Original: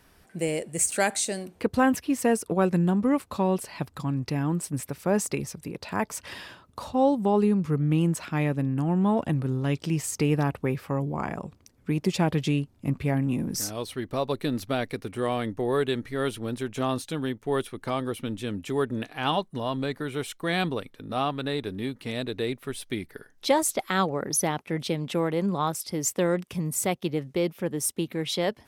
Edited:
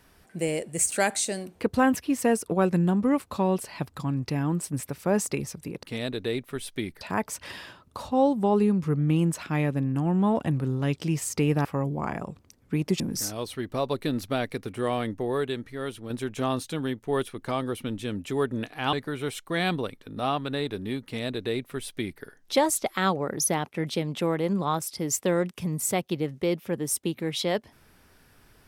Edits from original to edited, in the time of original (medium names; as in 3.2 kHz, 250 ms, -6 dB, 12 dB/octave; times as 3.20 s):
10.47–10.81 s: delete
12.16–13.39 s: delete
15.45–16.49 s: fade out quadratic, to -6 dB
19.32–19.86 s: delete
21.97–23.15 s: copy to 5.83 s